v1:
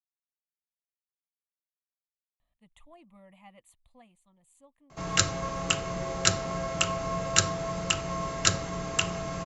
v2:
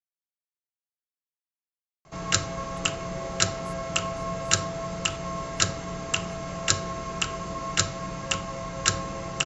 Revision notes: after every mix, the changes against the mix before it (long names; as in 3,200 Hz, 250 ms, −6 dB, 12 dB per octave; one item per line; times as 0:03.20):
speech +5.5 dB
background: entry −2.85 s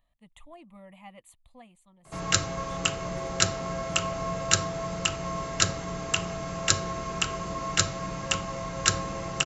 speech: entry −2.40 s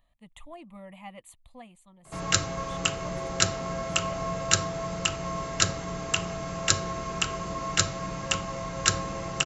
speech +4.0 dB